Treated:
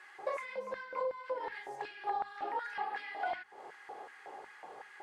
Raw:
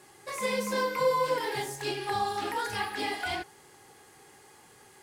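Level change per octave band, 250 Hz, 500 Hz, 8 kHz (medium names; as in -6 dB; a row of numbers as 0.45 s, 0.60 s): -18.5 dB, -9.5 dB, under -20 dB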